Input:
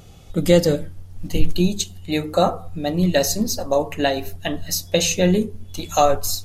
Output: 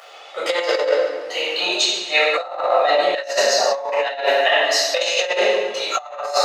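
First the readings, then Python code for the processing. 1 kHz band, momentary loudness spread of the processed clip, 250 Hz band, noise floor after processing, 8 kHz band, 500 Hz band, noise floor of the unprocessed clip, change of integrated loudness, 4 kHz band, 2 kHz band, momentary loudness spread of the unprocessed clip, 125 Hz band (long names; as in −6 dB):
+3.5 dB, 7 LU, −16.0 dB, −40 dBFS, −1.5 dB, +2.5 dB, −42 dBFS, +2.0 dB, +7.0 dB, +10.5 dB, 11 LU, below −35 dB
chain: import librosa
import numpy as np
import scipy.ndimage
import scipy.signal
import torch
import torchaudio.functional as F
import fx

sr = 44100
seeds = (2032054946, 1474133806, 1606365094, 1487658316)

p1 = fx.spacing_loss(x, sr, db_at_10k=27)
p2 = 10.0 ** (-15.0 / 20.0) * np.tanh(p1 / 10.0 ** (-15.0 / 20.0))
p3 = p1 + (p2 * 10.0 ** (-6.0 / 20.0))
p4 = scipy.signal.sosfilt(scipy.signal.bessel(6, 970.0, 'highpass', norm='mag', fs=sr, output='sos'), p3)
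p5 = fx.echo_feedback(p4, sr, ms=139, feedback_pct=42, wet_db=-13.0)
p6 = fx.room_shoebox(p5, sr, seeds[0], volume_m3=890.0, walls='mixed', distance_m=6.2)
p7 = fx.over_compress(p6, sr, threshold_db=-22.0, ratio=-0.5)
y = p7 * 10.0 ** (4.0 / 20.0)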